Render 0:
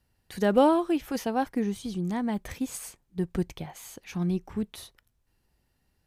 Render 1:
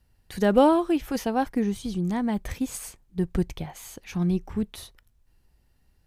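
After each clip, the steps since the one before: low shelf 68 Hz +11.5 dB; gain +2 dB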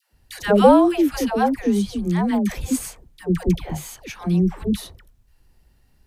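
dispersion lows, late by 0.125 s, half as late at 600 Hz; gain +6 dB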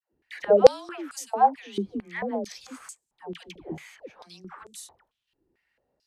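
stepped band-pass 4.5 Hz 350–7700 Hz; gain +4.5 dB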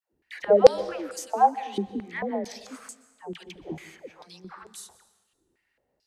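reverb RT60 1.3 s, pre-delay 0.113 s, DRR 16 dB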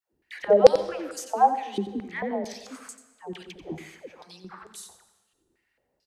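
echo 89 ms -11.5 dB

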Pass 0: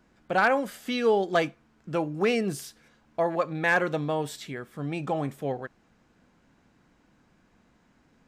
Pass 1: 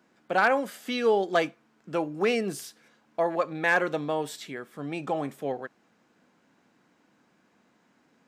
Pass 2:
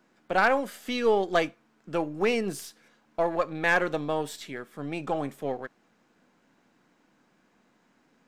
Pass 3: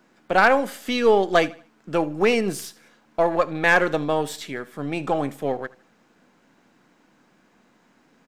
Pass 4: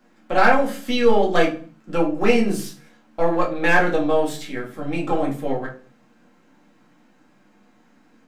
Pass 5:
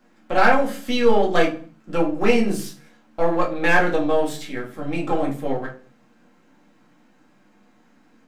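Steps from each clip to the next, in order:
HPF 210 Hz 12 dB/oct
half-wave gain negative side -3 dB; gain +1 dB
feedback echo 78 ms, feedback 36%, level -21 dB; gain +6 dB
shoebox room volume 170 m³, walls furnished, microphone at 2.2 m; gain -4 dB
half-wave gain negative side -3 dB

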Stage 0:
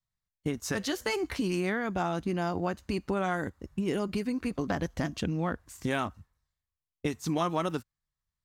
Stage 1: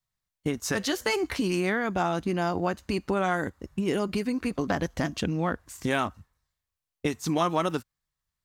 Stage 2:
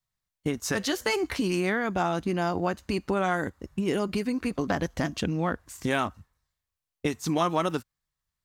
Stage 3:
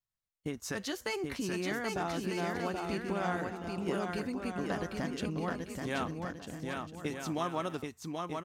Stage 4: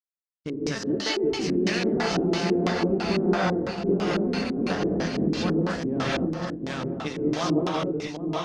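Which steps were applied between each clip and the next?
low shelf 220 Hz -4 dB; gain +4.5 dB
nothing audible
bouncing-ball echo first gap 0.78 s, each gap 0.6×, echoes 5; gain -9 dB
G.711 law mismatch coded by A; non-linear reverb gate 0.25 s rising, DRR -4.5 dB; LFO low-pass square 3 Hz 360–5000 Hz; gain +5 dB

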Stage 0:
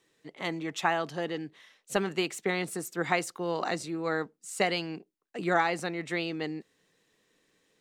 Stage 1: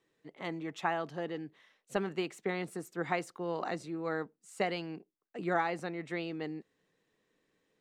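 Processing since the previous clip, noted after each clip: high shelf 2900 Hz -10 dB; gain -4 dB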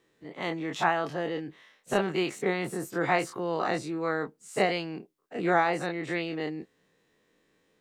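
spectral dilation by 60 ms; gain +3.5 dB

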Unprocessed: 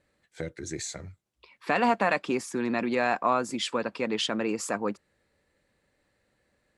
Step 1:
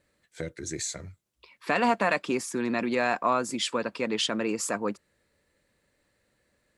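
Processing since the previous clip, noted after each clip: high shelf 5800 Hz +6 dB; notch 790 Hz, Q 12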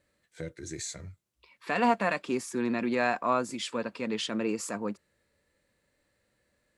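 harmonic-percussive split percussive -7 dB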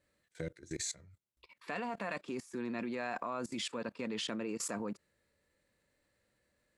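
level quantiser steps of 20 dB; gain +2 dB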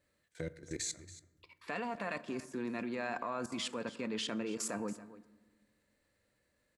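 echo 0.28 s -16.5 dB; on a send at -15 dB: reverb RT60 1.4 s, pre-delay 5 ms

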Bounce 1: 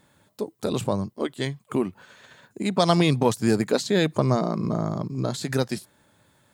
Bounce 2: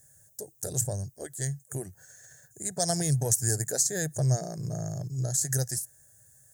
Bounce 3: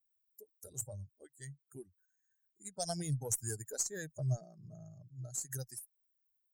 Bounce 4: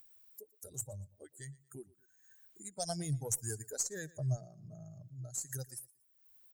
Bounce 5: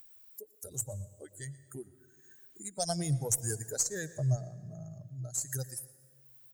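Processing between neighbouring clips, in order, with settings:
EQ curve 140 Hz 0 dB, 220 Hz -22 dB, 390 Hz -13 dB, 730 Hz -8 dB, 1100 Hz -29 dB, 1700 Hz -3 dB, 2400 Hz -25 dB, 3800 Hz -18 dB, 6300 Hz +12 dB
per-bin expansion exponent 2; added harmonics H 4 -30 dB, 8 -42 dB, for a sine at -11 dBFS; gain -7 dB
upward compressor, threshold -45 dBFS; feedback echo 0.117 s, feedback 35%, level -22 dB
reverb RT60 1.8 s, pre-delay 86 ms, DRR 18 dB; gain +5 dB

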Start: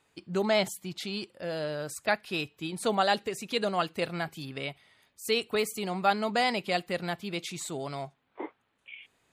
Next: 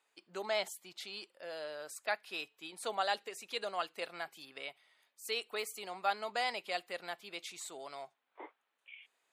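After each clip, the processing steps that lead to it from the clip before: HPF 540 Hz 12 dB/oct; gain -7 dB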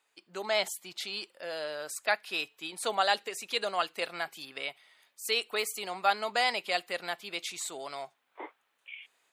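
AGC gain up to 5 dB; bell 530 Hz -2.5 dB 2.8 oct; gain +3.5 dB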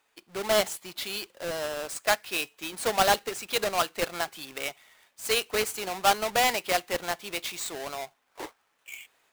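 half-waves squared off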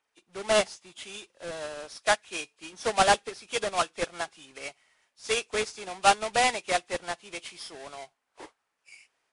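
nonlinear frequency compression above 2300 Hz 1.5:1; upward expander 1.5:1, over -39 dBFS; gain +2.5 dB

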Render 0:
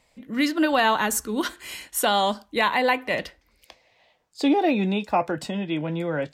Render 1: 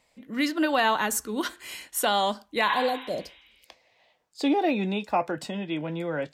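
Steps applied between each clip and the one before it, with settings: spectral repair 2.71–3.6, 780–4000 Hz both; low shelf 120 Hz -7.5 dB; gain -2.5 dB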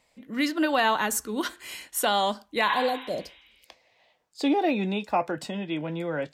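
nothing audible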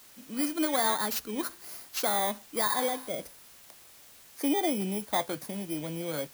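FFT order left unsorted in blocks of 16 samples; added noise white -50 dBFS; gain -4 dB

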